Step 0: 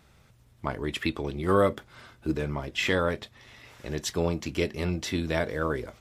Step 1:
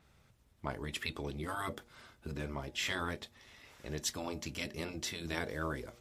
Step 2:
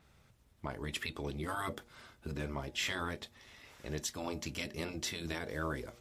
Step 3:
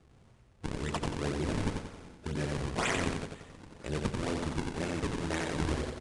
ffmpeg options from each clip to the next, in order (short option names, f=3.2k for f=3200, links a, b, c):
-af "afftfilt=real='re*lt(hypot(re,im),0.224)':imag='im*lt(hypot(re,im),0.224)':win_size=1024:overlap=0.75,bandreject=f=119.2:t=h:w=4,bandreject=f=238.4:t=h:w=4,bandreject=f=357.6:t=h:w=4,bandreject=f=476.8:t=h:w=4,bandreject=f=596:t=h:w=4,bandreject=f=715.2:t=h:w=4,bandreject=f=834.4:t=h:w=4,adynamicequalizer=threshold=0.00447:dfrequency=4200:dqfactor=0.7:tfrequency=4200:tqfactor=0.7:attack=5:release=100:ratio=0.375:range=3:mode=boostabove:tftype=highshelf,volume=-7dB"
-af "alimiter=level_in=1dB:limit=-24dB:level=0:latency=1:release=178,volume=-1dB,volume=1dB"
-af "acrusher=samples=41:mix=1:aa=0.000001:lfo=1:lforange=65.6:lforate=2,aecho=1:1:90|180|270|360|450|540:0.631|0.284|0.128|0.0575|0.0259|0.0116,aresample=22050,aresample=44100,volume=4.5dB"